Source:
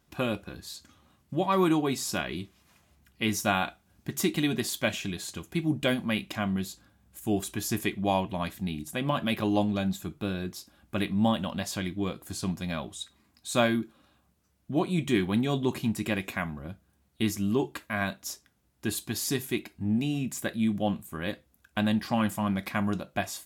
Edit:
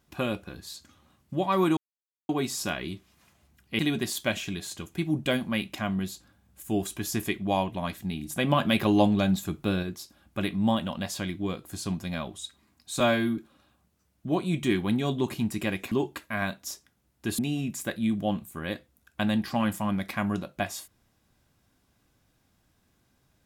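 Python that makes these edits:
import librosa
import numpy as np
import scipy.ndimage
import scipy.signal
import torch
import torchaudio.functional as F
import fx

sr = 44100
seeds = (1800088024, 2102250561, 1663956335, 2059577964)

y = fx.edit(x, sr, fx.insert_silence(at_s=1.77, length_s=0.52),
    fx.cut(start_s=3.27, length_s=1.09),
    fx.clip_gain(start_s=8.83, length_s=1.57, db=4.5),
    fx.stretch_span(start_s=13.57, length_s=0.25, factor=1.5),
    fx.cut(start_s=16.36, length_s=1.15),
    fx.cut(start_s=18.98, length_s=0.98), tone=tone)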